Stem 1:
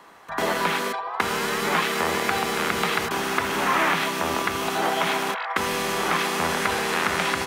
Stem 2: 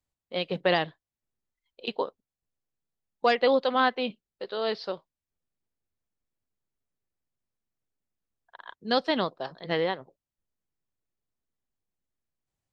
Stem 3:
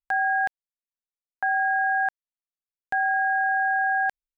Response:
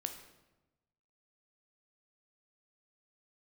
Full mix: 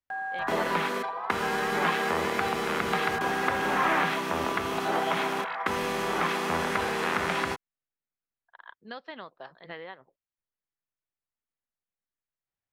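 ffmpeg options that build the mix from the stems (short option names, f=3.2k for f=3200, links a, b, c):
-filter_complex "[0:a]adelay=100,volume=-5dB,asplit=2[a][b];[b]volume=-9.5dB[c];[1:a]acompressor=threshold=-31dB:ratio=5,equalizer=f=1.8k:w=0.5:g=12,volume=-12dB[d];[2:a]volume=-9.5dB[e];[3:a]atrim=start_sample=2205[f];[c][f]afir=irnorm=-1:irlink=0[g];[a][d][e][g]amix=inputs=4:normalize=0,highshelf=f=3.3k:g=-8.5"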